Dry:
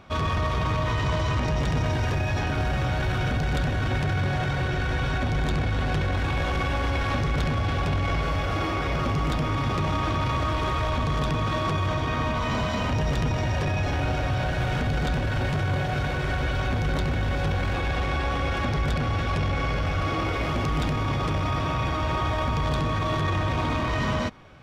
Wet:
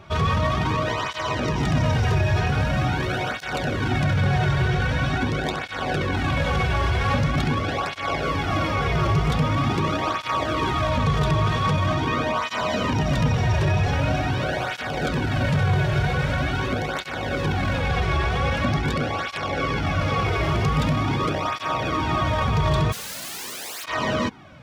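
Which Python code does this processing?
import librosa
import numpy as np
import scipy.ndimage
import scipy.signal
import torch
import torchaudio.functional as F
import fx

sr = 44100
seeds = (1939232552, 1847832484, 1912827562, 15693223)

y = fx.overflow_wrap(x, sr, gain_db=32.5, at=(22.91, 23.83), fade=0.02)
y = fx.flanger_cancel(y, sr, hz=0.44, depth_ms=4.1)
y = y * 10.0 ** (6.5 / 20.0)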